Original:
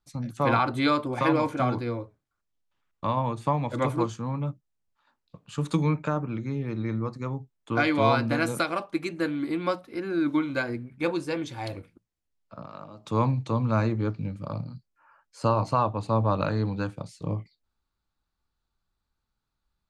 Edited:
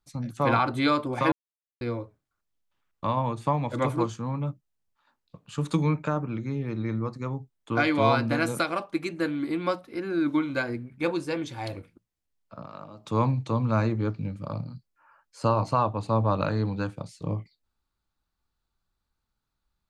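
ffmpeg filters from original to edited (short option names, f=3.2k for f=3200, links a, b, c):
-filter_complex "[0:a]asplit=3[a][b][c];[a]atrim=end=1.32,asetpts=PTS-STARTPTS,afade=t=out:st=1.316:d=0.004:c=hsin[d];[b]atrim=start=1.32:end=1.81,asetpts=PTS-STARTPTS,volume=0[e];[c]atrim=start=1.81,asetpts=PTS-STARTPTS,afade=t=in:d=0.004:c=hsin[f];[d][e][f]concat=n=3:v=0:a=1"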